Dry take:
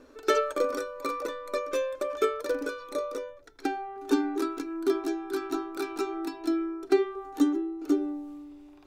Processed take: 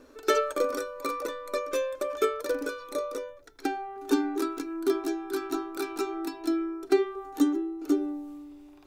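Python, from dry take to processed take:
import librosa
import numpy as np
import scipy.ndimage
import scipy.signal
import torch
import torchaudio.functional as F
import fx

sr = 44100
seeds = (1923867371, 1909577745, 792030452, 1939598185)

y = fx.high_shelf(x, sr, hz=8300.0, db=7.0)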